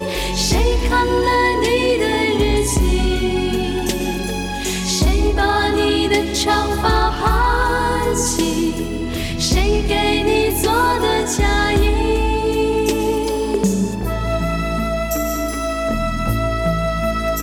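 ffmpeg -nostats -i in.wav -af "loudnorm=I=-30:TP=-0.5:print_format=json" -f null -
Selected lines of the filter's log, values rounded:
"input_i" : "-18.2",
"input_tp" : "-6.8",
"input_lra" : "3.6",
"input_thresh" : "-28.2",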